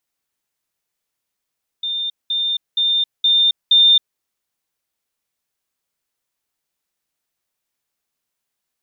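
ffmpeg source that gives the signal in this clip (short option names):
-f lavfi -i "aevalsrc='pow(10,(-20+3*floor(t/0.47))/20)*sin(2*PI*3610*t)*clip(min(mod(t,0.47),0.27-mod(t,0.47))/0.005,0,1)':d=2.35:s=44100"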